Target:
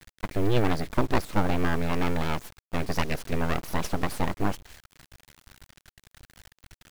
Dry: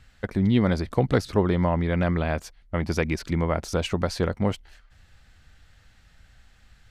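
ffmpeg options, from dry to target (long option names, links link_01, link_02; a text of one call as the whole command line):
ffmpeg -i in.wav -af "aeval=exprs='abs(val(0))':channel_layout=same,acrusher=bits=5:dc=4:mix=0:aa=0.000001" out.wav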